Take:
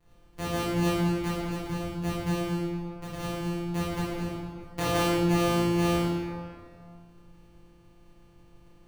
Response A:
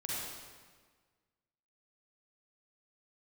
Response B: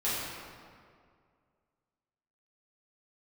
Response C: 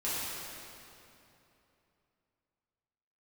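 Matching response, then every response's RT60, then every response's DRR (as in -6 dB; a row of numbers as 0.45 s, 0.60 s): B; 1.5 s, 2.1 s, 3.0 s; -6.5 dB, -11.0 dB, -11.5 dB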